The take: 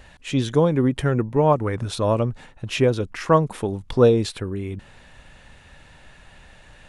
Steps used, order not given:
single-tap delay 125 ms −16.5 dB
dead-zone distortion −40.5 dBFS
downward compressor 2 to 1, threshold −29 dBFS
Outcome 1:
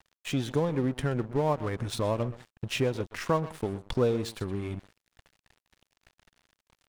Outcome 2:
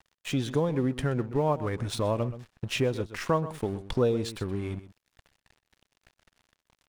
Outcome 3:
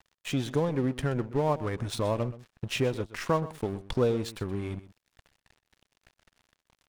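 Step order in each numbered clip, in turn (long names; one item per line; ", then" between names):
single-tap delay, then downward compressor, then dead-zone distortion
dead-zone distortion, then single-tap delay, then downward compressor
downward compressor, then dead-zone distortion, then single-tap delay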